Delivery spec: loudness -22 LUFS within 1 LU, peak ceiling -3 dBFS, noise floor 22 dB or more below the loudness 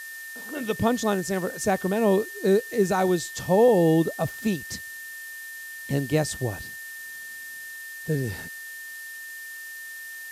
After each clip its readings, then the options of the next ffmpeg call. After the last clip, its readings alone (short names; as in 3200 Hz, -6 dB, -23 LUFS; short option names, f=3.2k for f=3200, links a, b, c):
steady tone 1800 Hz; tone level -37 dBFS; noise floor -39 dBFS; noise floor target -47 dBFS; loudness -25.0 LUFS; peak -9.5 dBFS; loudness target -22.0 LUFS
-> -af "bandreject=f=1.8k:w=30"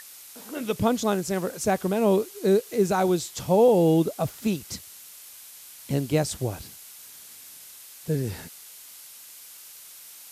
steady tone none; noise floor -46 dBFS; noise floor target -47 dBFS
-> -af "afftdn=nr=6:nf=-46"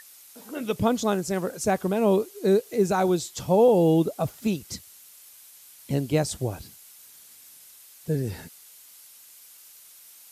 noise floor -51 dBFS; loudness -24.5 LUFS; peak -10.0 dBFS; loudness target -22.0 LUFS
-> -af "volume=2.5dB"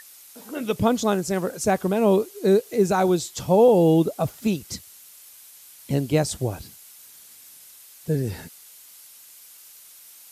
loudness -22.0 LUFS; peak -7.5 dBFS; noise floor -48 dBFS